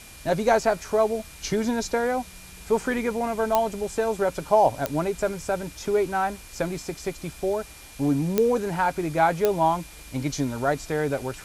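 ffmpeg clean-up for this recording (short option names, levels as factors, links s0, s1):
-af "adeclick=t=4,bandreject=f=2400:w=30,afwtdn=0.0056"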